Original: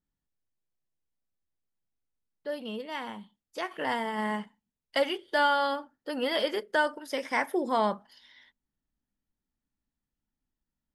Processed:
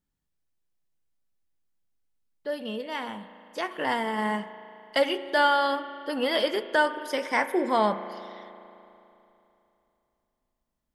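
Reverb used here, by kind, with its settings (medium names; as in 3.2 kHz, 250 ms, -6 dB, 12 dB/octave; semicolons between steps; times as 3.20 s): spring tank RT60 3 s, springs 36 ms, chirp 45 ms, DRR 12 dB; trim +3 dB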